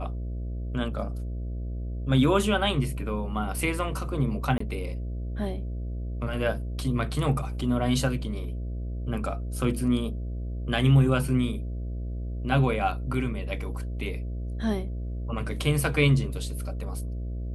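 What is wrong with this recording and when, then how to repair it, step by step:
mains buzz 60 Hz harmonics 11 −32 dBFS
0:04.58–0:04.60: drop-out 24 ms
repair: hum removal 60 Hz, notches 11
repair the gap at 0:04.58, 24 ms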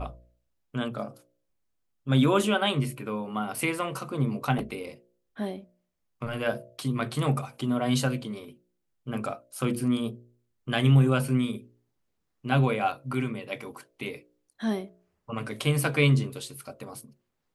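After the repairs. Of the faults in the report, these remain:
none of them is left

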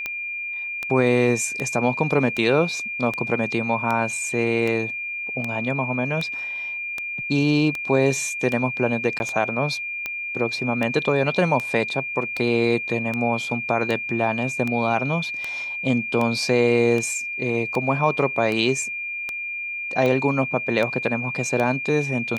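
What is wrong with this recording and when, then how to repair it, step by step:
scratch tick 78 rpm −13 dBFS
whistle 2,400 Hz −27 dBFS
0:09.19–0:09.20: drop-out 11 ms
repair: click removal
notch filter 2,400 Hz, Q 30
repair the gap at 0:09.19, 11 ms

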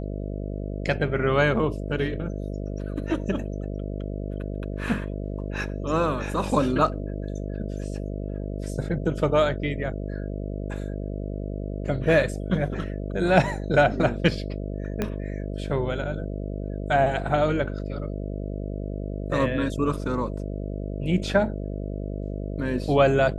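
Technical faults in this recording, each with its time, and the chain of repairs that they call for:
mains buzz 50 Hz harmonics 13 −31 dBFS
0:15.02: click −12 dBFS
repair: click removal
hum removal 50 Hz, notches 13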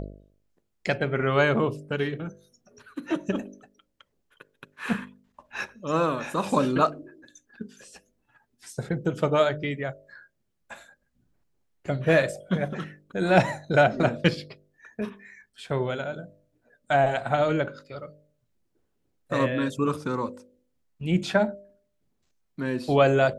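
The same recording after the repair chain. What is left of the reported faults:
0:15.02: click

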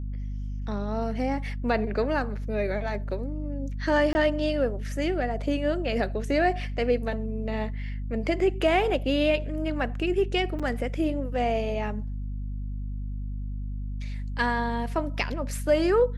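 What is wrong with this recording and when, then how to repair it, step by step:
mains hum 50 Hz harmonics 5 −32 dBFS
0:04.13–0:04.15: drop-out 20 ms
0:10.59–0:10.60: drop-out 6.3 ms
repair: hum removal 50 Hz, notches 5
repair the gap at 0:04.13, 20 ms
repair the gap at 0:10.59, 6.3 ms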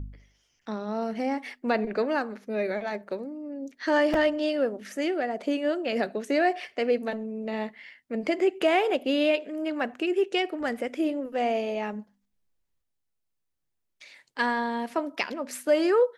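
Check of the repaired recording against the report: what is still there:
none of them is left

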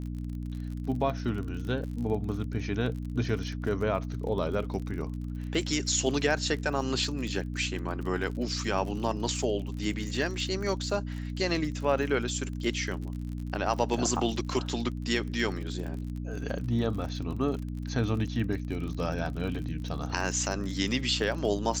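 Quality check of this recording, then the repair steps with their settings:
surface crackle 40 per second −36 dBFS
mains hum 60 Hz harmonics 5 −35 dBFS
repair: click removal
hum removal 60 Hz, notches 5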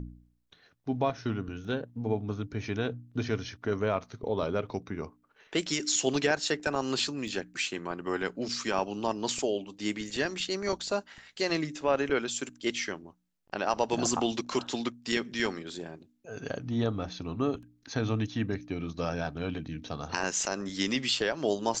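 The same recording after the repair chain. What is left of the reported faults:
none of them is left

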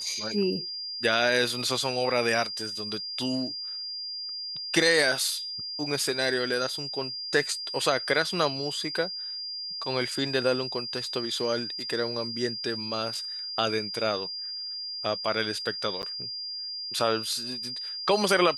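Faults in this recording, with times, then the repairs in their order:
whistle 4,800 Hz −33 dBFS
0:16.02–0:16.03: drop-out 9.5 ms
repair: notch filter 4,800 Hz, Q 30
repair the gap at 0:16.02, 9.5 ms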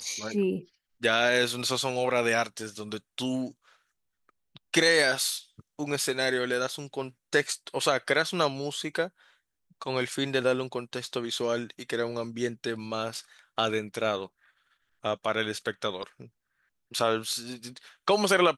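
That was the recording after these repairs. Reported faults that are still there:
none of them is left

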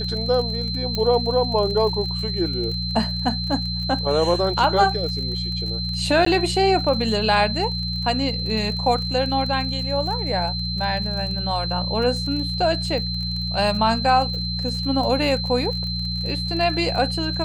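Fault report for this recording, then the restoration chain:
surface crackle 33 per second −29 dBFS
mains hum 60 Hz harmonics 3 −28 dBFS
whistle 4,100 Hz −27 dBFS
0:00.95: click −11 dBFS
0:06.25–0:06.26: drop-out 14 ms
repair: click removal
hum removal 60 Hz, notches 3
notch filter 4,100 Hz, Q 30
repair the gap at 0:06.25, 14 ms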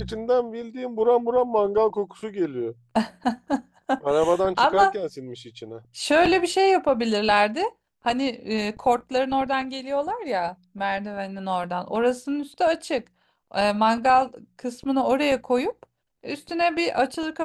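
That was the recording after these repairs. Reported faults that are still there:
none of them is left

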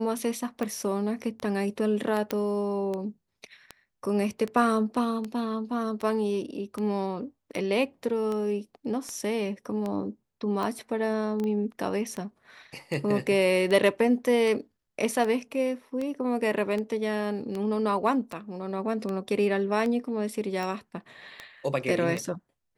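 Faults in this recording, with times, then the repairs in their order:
scratch tick 78 rpm −20 dBFS
0:02.31: click −13 dBFS
0:11.44: click −23 dBFS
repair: click removal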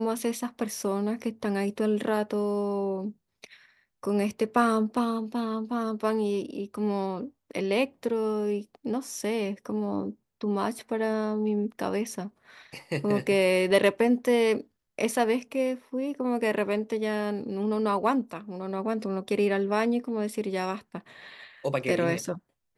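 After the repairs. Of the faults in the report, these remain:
none of them is left

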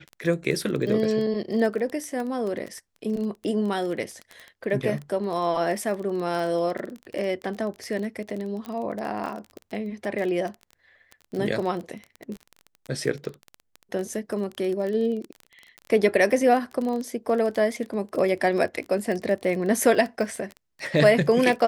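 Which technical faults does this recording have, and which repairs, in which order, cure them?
surface crackle 20 per second −29 dBFS
0:08.66: click −22 dBFS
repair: click removal

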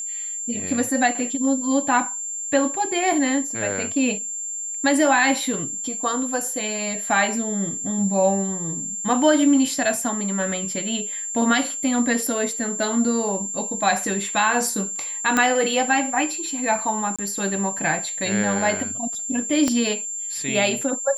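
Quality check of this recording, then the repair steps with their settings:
whistle 7,300 Hz −27 dBFS
0:15.37: click −6 dBFS
0:17.16–0:17.19: drop-out 26 ms
0:19.68: click −9 dBFS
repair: click removal
notch filter 7,300 Hz, Q 30
repair the gap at 0:17.16, 26 ms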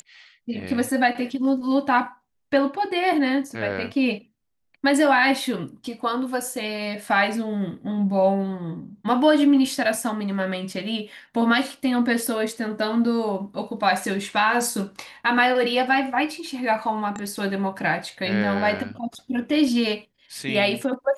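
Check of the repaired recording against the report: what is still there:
0:19.68: click

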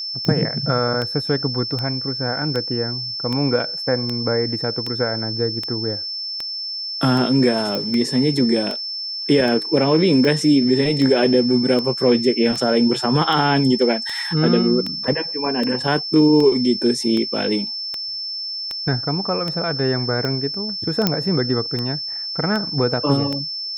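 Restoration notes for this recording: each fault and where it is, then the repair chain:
scratch tick 78 rpm −12 dBFS
whistle 5,300 Hz −25 dBFS
0:07.75: click −12 dBFS
0:21.07: click −2 dBFS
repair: click removal
notch filter 5,300 Hz, Q 30

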